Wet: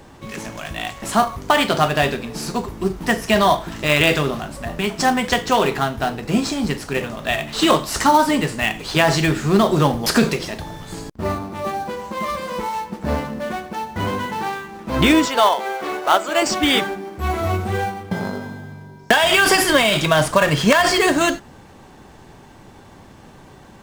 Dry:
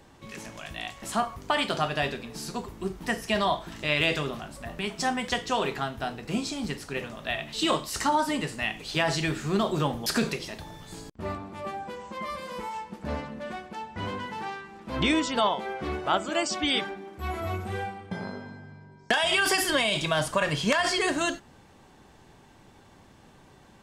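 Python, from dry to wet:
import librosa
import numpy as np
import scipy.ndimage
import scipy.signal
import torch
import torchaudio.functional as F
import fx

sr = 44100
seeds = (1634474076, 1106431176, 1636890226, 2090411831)

p1 = fx.highpass(x, sr, hz=450.0, slope=12, at=(15.25, 16.42))
p2 = fx.sample_hold(p1, sr, seeds[0], rate_hz=5100.0, jitter_pct=20)
p3 = p1 + (p2 * librosa.db_to_amplitude(-8.5))
y = p3 * librosa.db_to_amplitude(8.0)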